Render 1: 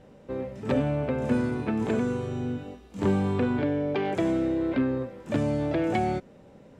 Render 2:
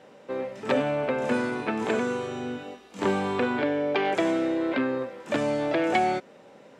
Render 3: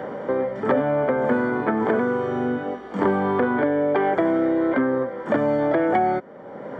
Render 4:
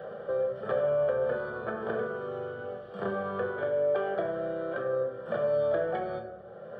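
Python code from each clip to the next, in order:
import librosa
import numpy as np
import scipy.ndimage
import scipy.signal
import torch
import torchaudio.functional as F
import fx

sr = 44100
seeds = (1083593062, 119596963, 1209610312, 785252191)

y1 = fx.weighting(x, sr, curve='A')
y1 = F.gain(torch.from_numpy(y1), 6.0).numpy()
y2 = scipy.signal.savgol_filter(y1, 41, 4, mode='constant')
y2 = fx.band_squash(y2, sr, depth_pct=70)
y2 = F.gain(torch.from_numpy(y2), 5.0).numpy()
y3 = fx.fixed_phaser(y2, sr, hz=1400.0, stages=8)
y3 = fx.room_shoebox(y3, sr, seeds[0], volume_m3=210.0, walls='mixed', distance_m=0.79)
y3 = F.gain(torch.from_numpy(y3), -8.5).numpy()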